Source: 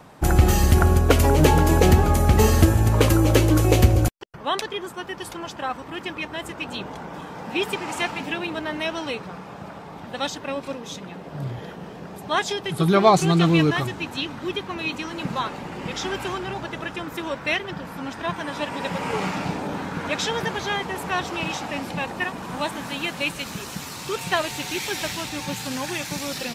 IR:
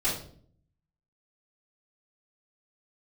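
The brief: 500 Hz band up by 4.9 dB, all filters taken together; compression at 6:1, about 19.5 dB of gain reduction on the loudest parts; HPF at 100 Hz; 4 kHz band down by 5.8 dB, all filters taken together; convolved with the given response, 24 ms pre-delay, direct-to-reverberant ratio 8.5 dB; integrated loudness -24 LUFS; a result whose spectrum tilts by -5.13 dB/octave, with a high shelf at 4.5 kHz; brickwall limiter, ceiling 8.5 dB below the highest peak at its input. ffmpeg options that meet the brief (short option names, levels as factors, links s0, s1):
-filter_complex "[0:a]highpass=100,equalizer=f=500:t=o:g=6.5,equalizer=f=4000:t=o:g=-5,highshelf=f=4500:g=-6,acompressor=threshold=0.0316:ratio=6,alimiter=level_in=1.19:limit=0.0631:level=0:latency=1,volume=0.841,asplit=2[s0][s1];[1:a]atrim=start_sample=2205,adelay=24[s2];[s1][s2]afir=irnorm=-1:irlink=0,volume=0.133[s3];[s0][s3]amix=inputs=2:normalize=0,volume=3.35"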